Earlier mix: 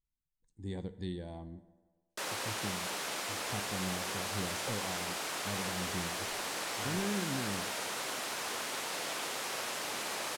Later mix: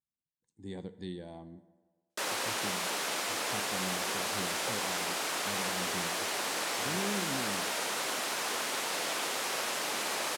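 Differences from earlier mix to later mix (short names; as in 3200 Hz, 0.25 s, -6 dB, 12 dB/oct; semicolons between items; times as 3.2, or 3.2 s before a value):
background +4.0 dB; master: add HPF 150 Hz 12 dB/oct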